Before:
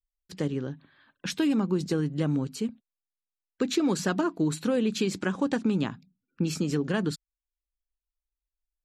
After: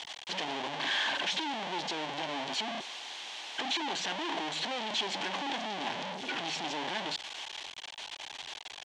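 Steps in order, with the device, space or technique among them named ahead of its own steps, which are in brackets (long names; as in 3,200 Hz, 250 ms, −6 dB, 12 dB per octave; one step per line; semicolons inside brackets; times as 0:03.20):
home computer beeper (sign of each sample alone; loudspeaker in its box 500–5,400 Hz, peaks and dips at 500 Hz −6 dB, 840 Hz +6 dB, 1,300 Hz −9 dB, 3,200 Hz +7 dB, 5,000 Hz −5 dB)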